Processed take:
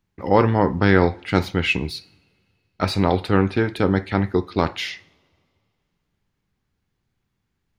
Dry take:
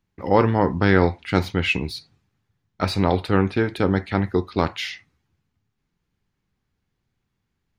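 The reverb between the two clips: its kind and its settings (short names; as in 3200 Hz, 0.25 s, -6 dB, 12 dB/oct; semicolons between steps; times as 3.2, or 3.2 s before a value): two-slope reverb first 0.64 s, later 2.5 s, from -18 dB, DRR 19 dB; gain +1 dB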